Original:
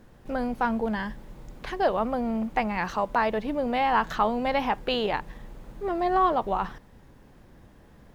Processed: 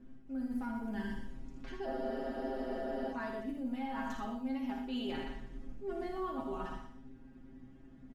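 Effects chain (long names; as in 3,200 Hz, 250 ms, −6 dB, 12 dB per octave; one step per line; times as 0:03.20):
octave-band graphic EQ 125/250/500/1,000/2,000/4,000 Hz −11/+8/−11/−11/−7/−10 dB
low-pass that shuts in the quiet parts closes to 2,900 Hz, open at −27 dBFS
stiff-string resonator 130 Hz, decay 0.2 s, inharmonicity 0.002
repeating echo 121 ms, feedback 25%, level −9 dB
reversed playback
downward compressor 6 to 1, threshold −46 dBFS, peak gain reduction 14 dB
reversed playback
on a send: ambience of single reflections 56 ms −7 dB, 80 ms −7 dB
on the sum: frozen spectrum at 0:01.88, 1.25 s
level +9 dB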